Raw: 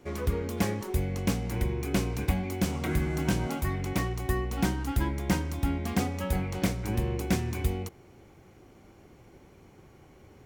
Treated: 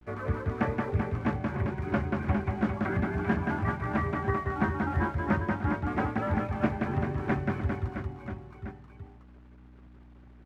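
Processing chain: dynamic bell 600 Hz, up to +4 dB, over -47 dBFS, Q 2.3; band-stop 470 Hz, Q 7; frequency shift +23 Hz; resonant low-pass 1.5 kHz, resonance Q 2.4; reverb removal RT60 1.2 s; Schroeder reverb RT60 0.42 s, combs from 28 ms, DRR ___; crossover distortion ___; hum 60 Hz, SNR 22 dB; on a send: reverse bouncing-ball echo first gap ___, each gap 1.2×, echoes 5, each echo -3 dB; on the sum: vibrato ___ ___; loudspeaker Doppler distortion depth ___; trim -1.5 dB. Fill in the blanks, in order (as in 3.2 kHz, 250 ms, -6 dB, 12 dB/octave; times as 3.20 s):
18.5 dB, -56.5 dBFS, 180 ms, 0.34 Hz, 44 cents, 0.14 ms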